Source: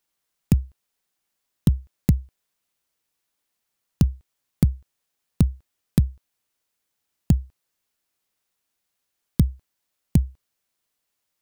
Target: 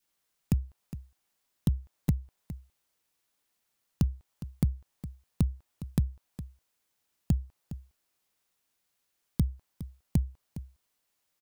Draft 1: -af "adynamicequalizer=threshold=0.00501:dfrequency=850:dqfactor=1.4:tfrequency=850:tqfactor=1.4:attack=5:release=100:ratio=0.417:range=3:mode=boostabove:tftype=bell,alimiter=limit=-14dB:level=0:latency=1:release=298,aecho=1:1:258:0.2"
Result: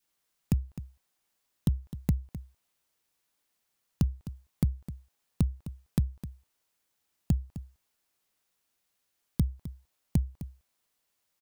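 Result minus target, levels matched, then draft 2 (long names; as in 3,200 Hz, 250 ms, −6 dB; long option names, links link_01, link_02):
echo 153 ms early
-af "adynamicequalizer=threshold=0.00501:dfrequency=850:dqfactor=1.4:tfrequency=850:tqfactor=1.4:attack=5:release=100:ratio=0.417:range=3:mode=boostabove:tftype=bell,alimiter=limit=-14dB:level=0:latency=1:release=298,aecho=1:1:411:0.2"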